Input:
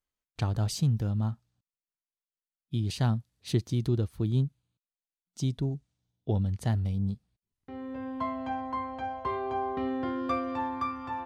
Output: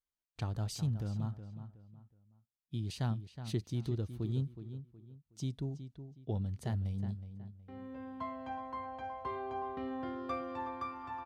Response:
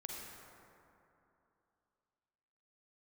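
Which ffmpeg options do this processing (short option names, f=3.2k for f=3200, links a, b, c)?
-filter_complex "[0:a]asplit=2[a][b];[b]adelay=369,lowpass=f=2.9k:p=1,volume=-10.5dB,asplit=2[c][d];[d]adelay=369,lowpass=f=2.9k:p=1,volume=0.32,asplit=2[e][f];[f]adelay=369,lowpass=f=2.9k:p=1,volume=0.32[g];[a][c][e][g]amix=inputs=4:normalize=0,volume=-8dB"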